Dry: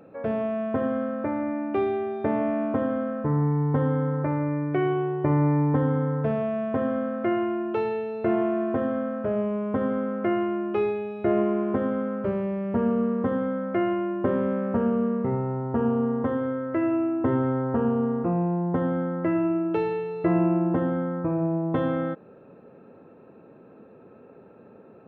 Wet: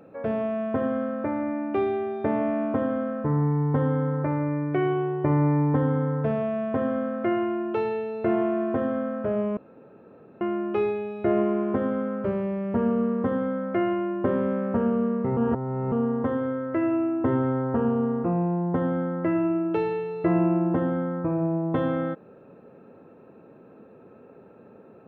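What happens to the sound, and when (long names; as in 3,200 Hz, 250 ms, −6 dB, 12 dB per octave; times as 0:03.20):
0:09.57–0:10.41: fill with room tone
0:15.37–0:15.92: reverse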